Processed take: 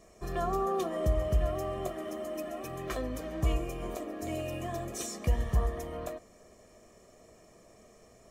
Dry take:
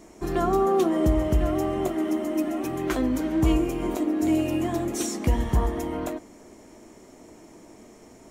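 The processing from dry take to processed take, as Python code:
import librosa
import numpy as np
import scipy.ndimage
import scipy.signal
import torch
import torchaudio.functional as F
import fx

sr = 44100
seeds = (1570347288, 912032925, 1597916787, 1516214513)

y = x + 0.68 * np.pad(x, (int(1.7 * sr / 1000.0), 0))[:len(x)]
y = y * librosa.db_to_amplitude(-8.5)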